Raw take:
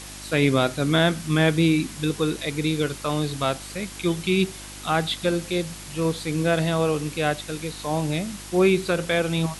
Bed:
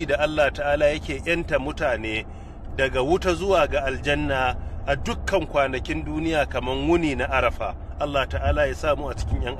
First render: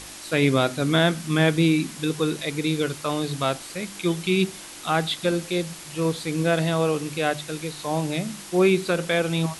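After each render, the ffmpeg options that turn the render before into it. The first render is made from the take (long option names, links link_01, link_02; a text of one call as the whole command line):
ffmpeg -i in.wav -af "bandreject=frequency=50:width_type=h:width=4,bandreject=frequency=100:width_type=h:width=4,bandreject=frequency=150:width_type=h:width=4,bandreject=frequency=200:width_type=h:width=4,bandreject=frequency=250:width_type=h:width=4" out.wav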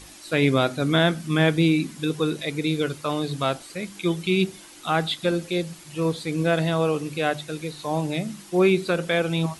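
ffmpeg -i in.wav -af "afftdn=noise_reduction=8:noise_floor=-40" out.wav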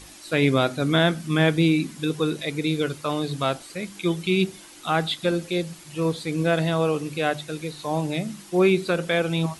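ffmpeg -i in.wav -af anull out.wav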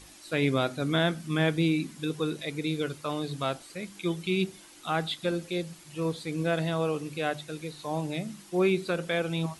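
ffmpeg -i in.wav -af "volume=-6dB" out.wav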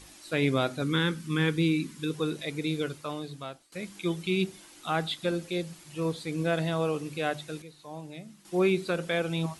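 ffmpeg -i in.wav -filter_complex "[0:a]asettb=1/sr,asplit=3[link_01][link_02][link_03];[link_01]atrim=end=0.824[link_04];[link_02]atrim=start=0.82:end=2.14,asetpts=PTS-STARTPTS,afade=type=in:duration=0.004:curve=qsin,afade=type=out:start_time=1.316:duration=0.004:curve=qsin,asuperstop=centerf=680:order=4:qfactor=2.1[link_05];[link_03]atrim=start=2.136[link_06];[link_04][link_05]acrossfade=duration=0.004:curve1=hsin:curve2=qsin[link_07];[link_07][link_06]acrossfade=duration=0.004:curve1=qsin:curve2=hsin,asplit=4[link_08][link_09][link_10][link_11];[link_08]atrim=end=3.72,asetpts=PTS-STARTPTS,afade=type=out:start_time=2.78:duration=0.94:silence=0.0944061[link_12];[link_09]atrim=start=3.72:end=7.622,asetpts=PTS-STARTPTS,afade=type=in:duration=0.004:curve=hsin:silence=0.0944061[link_13];[link_10]atrim=start=7.618:end=8.452,asetpts=PTS-STARTPTS,volume=-10dB[link_14];[link_11]atrim=start=8.448[link_15];[link_12][link_13]concat=n=2:v=0:a=1[link_16];[link_16][link_14]acrossfade=duration=0.004:curve1=hsin:curve2=hsin[link_17];[link_17][link_15]acrossfade=duration=0.004:curve1=hsin:curve2=hsin" out.wav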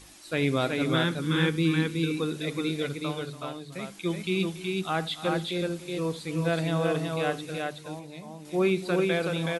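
ffmpeg -i in.wav -af "aecho=1:1:78|286|373:0.112|0.158|0.708" out.wav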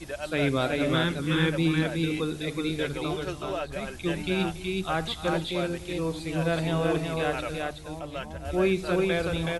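ffmpeg -i in.wav -i bed.wav -filter_complex "[1:a]volume=-13.5dB[link_01];[0:a][link_01]amix=inputs=2:normalize=0" out.wav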